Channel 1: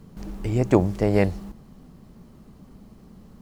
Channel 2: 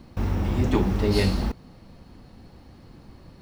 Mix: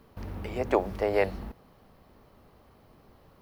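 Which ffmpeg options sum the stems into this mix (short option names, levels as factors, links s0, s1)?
-filter_complex "[0:a]highpass=f=450:w=0.5412,highpass=f=450:w=1.3066,volume=0.944[s0];[1:a]lowpass=2700,alimiter=limit=0.126:level=0:latency=1,volume=0.251[s1];[s0][s1]amix=inputs=2:normalize=0,equalizer=f=7400:w=1.4:g=-12.5"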